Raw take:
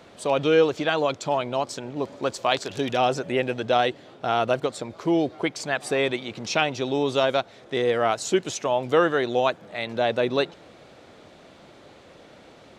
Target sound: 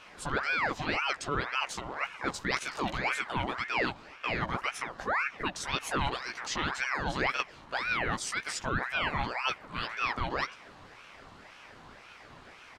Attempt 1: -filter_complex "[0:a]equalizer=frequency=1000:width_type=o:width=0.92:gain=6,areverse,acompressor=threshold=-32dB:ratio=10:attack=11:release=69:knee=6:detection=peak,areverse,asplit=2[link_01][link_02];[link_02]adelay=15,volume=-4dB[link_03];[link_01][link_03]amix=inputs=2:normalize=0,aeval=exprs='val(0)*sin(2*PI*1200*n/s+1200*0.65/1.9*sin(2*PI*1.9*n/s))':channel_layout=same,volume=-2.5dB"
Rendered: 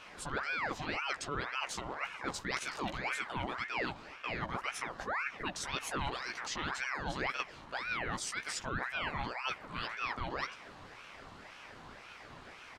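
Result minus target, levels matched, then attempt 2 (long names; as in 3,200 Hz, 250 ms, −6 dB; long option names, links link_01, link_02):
downward compressor: peak gain reduction +6.5 dB
-filter_complex "[0:a]equalizer=frequency=1000:width_type=o:width=0.92:gain=6,areverse,acompressor=threshold=-25dB:ratio=10:attack=11:release=69:knee=6:detection=peak,areverse,asplit=2[link_01][link_02];[link_02]adelay=15,volume=-4dB[link_03];[link_01][link_03]amix=inputs=2:normalize=0,aeval=exprs='val(0)*sin(2*PI*1200*n/s+1200*0.65/1.9*sin(2*PI*1.9*n/s))':channel_layout=same,volume=-2.5dB"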